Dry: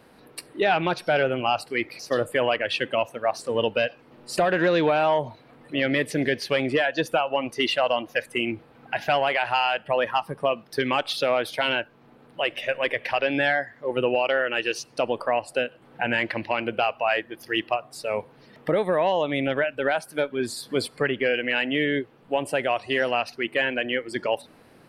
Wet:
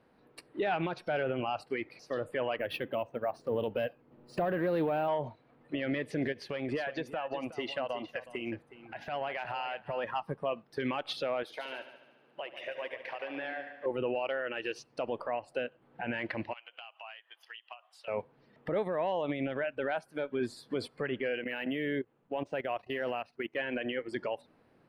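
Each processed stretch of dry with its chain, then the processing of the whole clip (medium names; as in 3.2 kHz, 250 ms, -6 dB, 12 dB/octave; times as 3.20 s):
2.58–5.08 s: tilt shelf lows +4 dB, about 680 Hz + careless resampling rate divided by 3×, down filtered, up hold + loudspeaker Doppler distortion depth 0.11 ms
6.32–10.04 s: compression, threshold -28 dBFS + delay 367 ms -11.5 dB
11.43–13.86 s: Bessel high-pass 330 Hz + compression 4:1, threshold -32 dBFS + multi-head delay 72 ms, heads first and second, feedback 62%, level -12 dB
16.53–18.08 s: high-pass 790 Hz 24 dB/octave + peaking EQ 3.1 kHz +14.5 dB 0.39 oct + compression, threshold -35 dBFS
21.44–23.56 s: level held to a coarse grid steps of 15 dB + decimation joined by straight lines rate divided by 3×
whole clip: low-pass 2.2 kHz 6 dB/octave; peak limiter -22.5 dBFS; upward expansion 1.5:1, over -51 dBFS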